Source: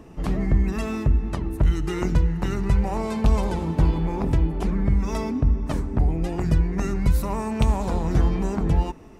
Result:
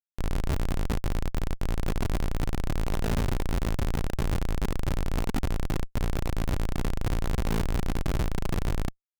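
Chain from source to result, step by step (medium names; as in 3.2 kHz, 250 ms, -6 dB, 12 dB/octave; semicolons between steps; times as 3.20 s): ring modulator 28 Hz; Schmitt trigger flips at -23.5 dBFS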